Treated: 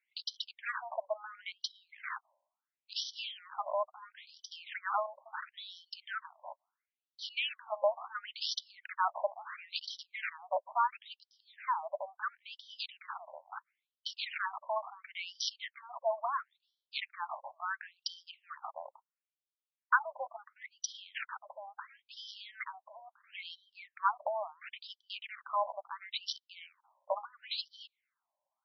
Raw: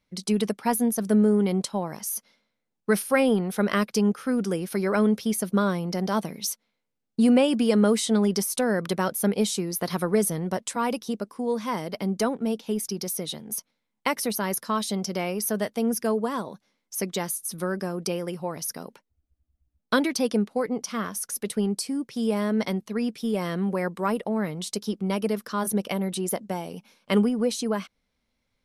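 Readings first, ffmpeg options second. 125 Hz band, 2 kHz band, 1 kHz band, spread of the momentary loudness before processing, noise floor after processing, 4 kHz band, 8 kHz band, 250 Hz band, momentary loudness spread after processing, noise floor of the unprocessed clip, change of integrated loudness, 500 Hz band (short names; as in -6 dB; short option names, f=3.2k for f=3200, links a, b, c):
under -40 dB, -5.5 dB, -4.5 dB, 10 LU, under -85 dBFS, -5.0 dB, -20.0 dB, under -40 dB, 16 LU, -79 dBFS, -12.5 dB, -14.5 dB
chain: -af "aexciter=amount=14.1:drive=7.1:freq=8.2k,adynamicsmooth=sensitivity=3.5:basefreq=5.2k,afftfilt=real='re*between(b*sr/1024,750*pow(4300/750,0.5+0.5*sin(2*PI*0.73*pts/sr))/1.41,750*pow(4300/750,0.5+0.5*sin(2*PI*0.73*pts/sr))*1.41)':imag='im*between(b*sr/1024,750*pow(4300/750,0.5+0.5*sin(2*PI*0.73*pts/sr))/1.41,750*pow(4300/750,0.5+0.5*sin(2*PI*0.73*pts/sr))*1.41)':win_size=1024:overlap=0.75"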